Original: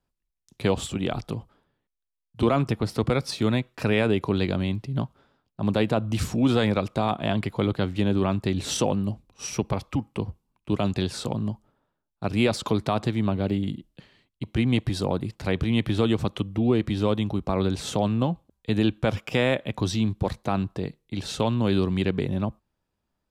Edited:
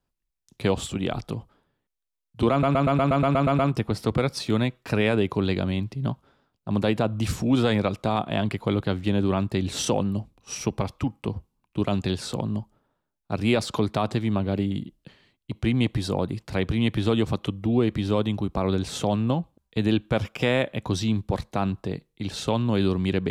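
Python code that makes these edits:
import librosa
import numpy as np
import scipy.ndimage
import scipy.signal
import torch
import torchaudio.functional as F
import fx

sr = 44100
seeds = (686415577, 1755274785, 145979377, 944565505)

y = fx.edit(x, sr, fx.stutter(start_s=2.51, slice_s=0.12, count=10), tone=tone)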